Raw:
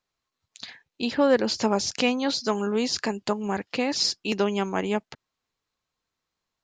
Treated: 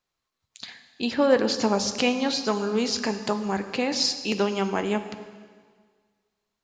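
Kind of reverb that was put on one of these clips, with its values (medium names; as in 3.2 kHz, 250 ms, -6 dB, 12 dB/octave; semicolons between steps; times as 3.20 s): plate-style reverb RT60 1.7 s, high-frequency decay 0.95×, DRR 8.5 dB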